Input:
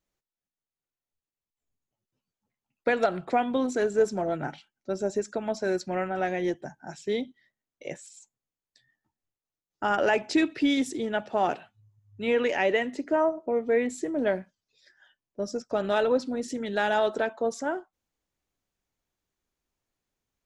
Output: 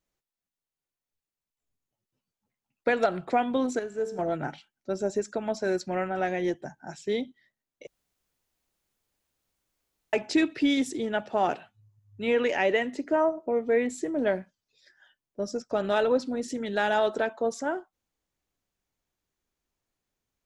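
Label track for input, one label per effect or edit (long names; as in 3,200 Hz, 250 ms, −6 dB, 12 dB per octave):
3.790000	4.190000	tuned comb filter 74 Hz, decay 1.5 s, mix 70%
7.870000	10.130000	fill with room tone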